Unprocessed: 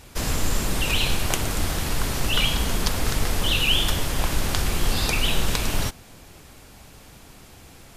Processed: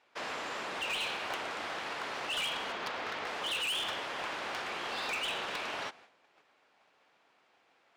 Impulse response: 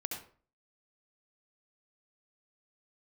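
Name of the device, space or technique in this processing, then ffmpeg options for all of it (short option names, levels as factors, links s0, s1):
walkie-talkie: -filter_complex "[0:a]asettb=1/sr,asplit=3[s0][s1][s2];[s0]atrim=end=2.724[s3];[s1]atrim=start=2.72:end=3.27,asetpts=PTS-STARTPTS,afade=t=in:d=0.004:c=qsin,afade=t=out:st=0.546:d=0.004:c=qsin,lowpass=5500[s4];[s2]atrim=start=3.266[s5];[s3][s4]acrossfade=d=0.004:c1=hsin:c2=qsin[s6];[s6][s5]acrossfade=d=0.004:c1=qsin:c2=hsin,highpass=600,lowpass=2700,asoftclip=type=hard:threshold=0.0422,agate=range=0.282:threshold=0.00251:ratio=16:detection=peak,volume=0.668"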